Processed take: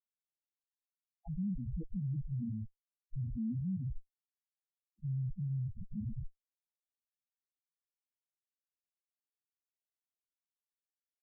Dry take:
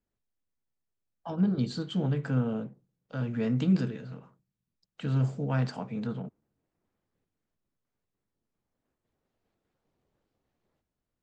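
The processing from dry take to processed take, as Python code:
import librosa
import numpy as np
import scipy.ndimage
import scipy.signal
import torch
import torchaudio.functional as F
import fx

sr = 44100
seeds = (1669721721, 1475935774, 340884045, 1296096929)

y = fx.schmitt(x, sr, flips_db=-32.5)
y = fx.dynamic_eq(y, sr, hz=850.0, q=1.2, threshold_db=-53.0, ratio=4.0, max_db=6)
y = fx.spec_topn(y, sr, count=2)
y = y * 10.0 ** (1.0 / 20.0)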